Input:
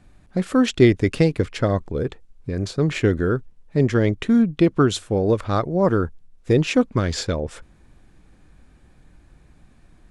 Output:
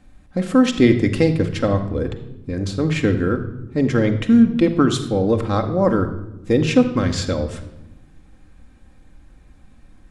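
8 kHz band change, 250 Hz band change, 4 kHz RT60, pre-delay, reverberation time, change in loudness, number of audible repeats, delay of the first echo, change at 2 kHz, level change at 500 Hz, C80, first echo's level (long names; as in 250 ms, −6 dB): +1.0 dB, +3.5 dB, 0.75 s, 4 ms, 0.95 s, +2.0 dB, no echo audible, no echo audible, +1.0 dB, +0.5 dB, 12.5 dB, no echo audible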